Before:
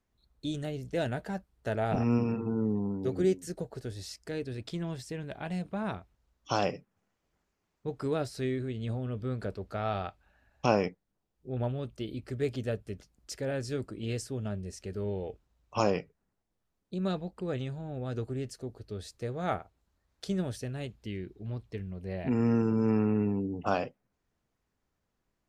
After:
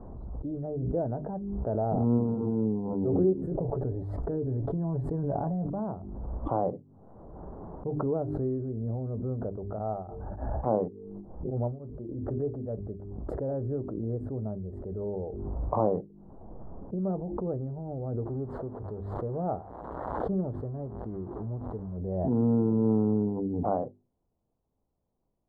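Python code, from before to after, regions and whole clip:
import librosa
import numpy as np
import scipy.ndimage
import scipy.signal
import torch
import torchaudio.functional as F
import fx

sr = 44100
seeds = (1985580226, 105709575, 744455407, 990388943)

y = fx.chain(x, sr, fx.comb(ms=7.1, depth=0.45),
    fx.env_flatten(amount_pct=100), at=(3.51, 5.7))
y = fx.chain(y, sr, fx.hum_notches(base_hz=50, count=9),
    fx.tremolo_abs(hz=3.5), at=(9.65, 12.76))
y = fx.chain(y, sr, fx.crossing_spikes(level_db=-23.0),
    fx.air_absorb(metres=140.0), at=(18.25, 21.97))
y = scipy.signal.sosfilt(scipy.signal.cheby2(4, 50, 2300.0, 'lowpass', fs=sr, output='sos'), y)
y = fx.hum_notches(y, sr, base_hz=50, count=8)
y = fx.pre_swell(y, sr, db_per_s=27.0)
y = y * 10.0 ** (1.5 / 20.0)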